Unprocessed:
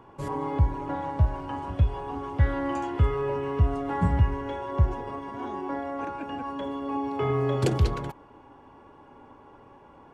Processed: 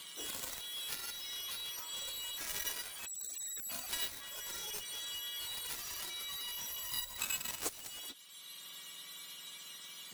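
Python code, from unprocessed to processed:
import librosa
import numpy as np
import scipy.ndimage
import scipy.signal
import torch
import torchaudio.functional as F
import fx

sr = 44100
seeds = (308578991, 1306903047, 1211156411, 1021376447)

y = fx.octave_mirror(x, sr, pivot_hz=1800.0)
y = fx.ellip_bandstop(y, sr, low_hz=190.0, high_hz=7600.0, order=3, stop_db=40, at=(3.05, 3.69), fade=0.02)
y = fx.cheby_harmonics(y, sr, harmonics=(7,), levels_db=(-13,), full_scale_db=-17.5)
y = fx.band_squash(y, sr, depth_pct=70)
y = y * librosa.db_to_amplitude(1.0)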